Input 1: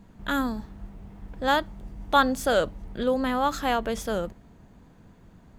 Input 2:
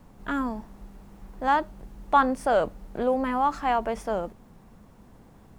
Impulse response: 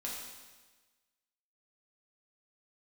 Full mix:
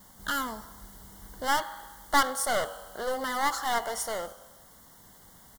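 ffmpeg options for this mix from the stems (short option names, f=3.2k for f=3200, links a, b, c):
-filter_complex "[0:a]volume=-8.5dB[a];[1:a]highpass=680,adelay=1.3,volume=-2.5dB,asplit=3[b][c][d];[c]volume=-11dB[e];[d]apad=whole_len=246192[f];[a][f]sidechaincompress=threshold=-34dB:ratio=8:attack=16:release=1340[g];[2:a]atrim=start_sample=2205[h];[e][h]afir=irnorm=-1:irlink=0[i];[g][b][i]amix=inputs=3:normalize=0,aeval=exprs='clip(val(0),-1,0.0224)':c=same,crystalizer=i=5:c=0,asuperstop=centerf=2500:order=20:qfactor=3.8"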